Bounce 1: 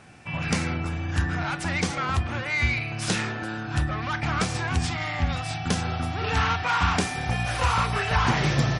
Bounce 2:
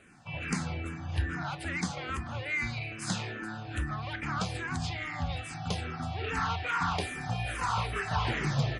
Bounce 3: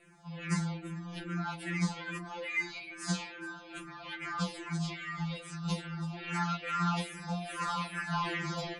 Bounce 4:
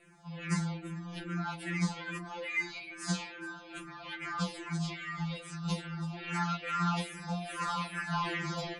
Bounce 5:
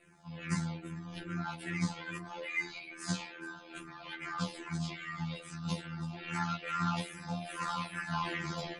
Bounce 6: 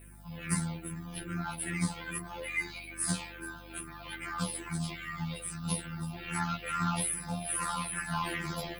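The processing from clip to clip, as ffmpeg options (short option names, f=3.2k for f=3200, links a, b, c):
-filter_complex "[0:a]bandreject=f=5.6k:w=11,asplit=2[a][b];[b]afreqshift=-2.4[c];[a][c]amix=inputs=2:normalize=1,volume=-4.5dB"
-af "afftfilt=real='re*2.83*eq(mod(b,8),0)':imag='im*2.83*eq(mod(b,8),0)':win_size=2048:overlap=0.75"
-af anull
-af "tremolo=f=79:d=0.462"
-af "aexciter=amount=12.9:drive=9:freq=9.8k,aeval=exprs='val(0)+0.00224*(sin(2*PI*50*n/s)+sin(2*PI*2*50*n/s)/2+sin(2*PI*3*50*n/s)/3+sin(2*PI*4*50*n/s)/4+sin(2*PI*5*50*n/s)/5)':c=same,volume=1.5dB"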